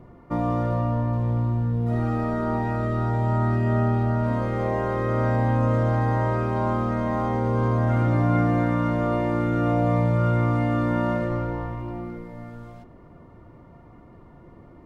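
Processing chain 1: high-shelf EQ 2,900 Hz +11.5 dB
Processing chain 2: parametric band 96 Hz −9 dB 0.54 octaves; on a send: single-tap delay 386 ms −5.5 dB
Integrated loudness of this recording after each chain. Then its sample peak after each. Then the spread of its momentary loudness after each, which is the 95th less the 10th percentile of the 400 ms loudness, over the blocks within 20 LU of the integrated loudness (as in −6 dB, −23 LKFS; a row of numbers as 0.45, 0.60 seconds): −23.5, −24.5 LKFS; −10.0, −11.5 dBFS; 7, 7 LU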